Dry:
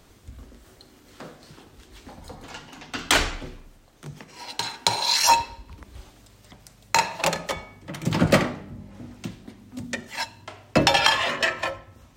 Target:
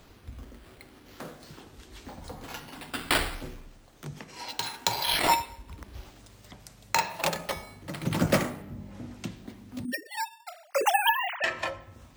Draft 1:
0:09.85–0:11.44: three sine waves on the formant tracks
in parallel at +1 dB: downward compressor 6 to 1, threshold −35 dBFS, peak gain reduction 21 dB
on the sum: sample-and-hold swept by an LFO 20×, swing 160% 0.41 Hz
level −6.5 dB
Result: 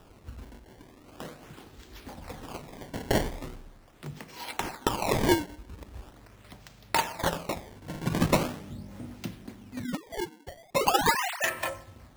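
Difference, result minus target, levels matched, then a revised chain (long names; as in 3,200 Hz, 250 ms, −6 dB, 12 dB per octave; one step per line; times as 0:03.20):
sample-and-hold swept by an LFO: distortion +12 dB
0:09.85–0:11.44: three sine waves on the formant tracks
in parallel at +1 dB: downward compressor 6 to 1, threshold −35 dBFS, peak gain reduction 21 dB
on the sum: sample-and-hold swept by an LFO 4×, swing 160% 0.41 Hz
level −6.5 dB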